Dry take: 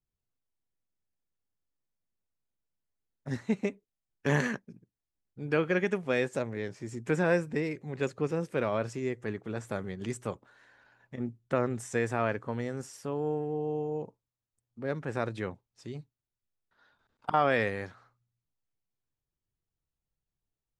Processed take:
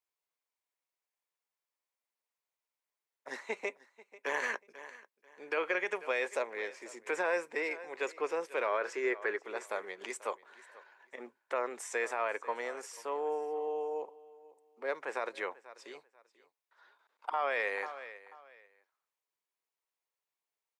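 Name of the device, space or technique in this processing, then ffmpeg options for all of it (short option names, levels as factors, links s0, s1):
laptop speaker: -filter_complex "[0:a]asettb=1/sr,asplit=3[s0][s1][s2];[s0]atrim=end=8.664[s3];[s1]atrim=start=8.66:end=9.39,asetpts=PTS-STARTPTS,afade=t=in:d=0.004:c=qsin,afade=t=out:st=0.726:d=0.004:c=qsin,equalizer=f=400:t=o:w=0.67:g=8,equalizer=f=1600:t=o:w=0.67:g=10,equalizer=f=10000:t=o:w=0.67:g=-7[s4];[s2]atrim=start=9.386[s5];[s3][s4]acrossfade=d=0.004:c1=hsin:c2=qsin[s6];[s6][s5]acrossfade=d=0.004:c1=qsin:c2=hsin,highpass=f=440:w=0.5412,highpass=f=440:w=1.3066,equalizer=f=1000:t=o:w=0.4:g=7,equalizer=f=2200:t=o:w=0.51:g=6,aecho=1:1:489|978:0.0944|0.0236,alimiter=limit=0.0794:level=0:latency=1:release=44"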